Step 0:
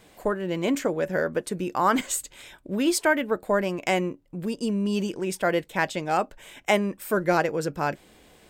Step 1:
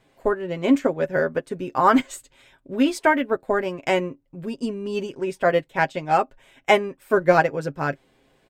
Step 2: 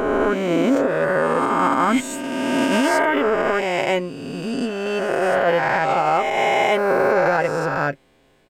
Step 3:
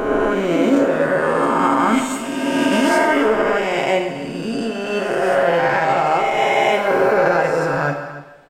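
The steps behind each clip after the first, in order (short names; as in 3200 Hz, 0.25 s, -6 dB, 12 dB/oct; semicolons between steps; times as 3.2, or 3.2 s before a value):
high shelf 5200 Hz -11.5 dB; comb 7.5 ms, depth 60%; upward expander 1.5:1, over -41 dBFS; gain +5.5 dB
spectral swells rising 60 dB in 2.38 s; limiter -9 dBFS, peak gain reduction 11 dB
echo 0.285 s -16 dB; plate-style reverb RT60 1.1 s, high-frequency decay 1×, DRR 3 dB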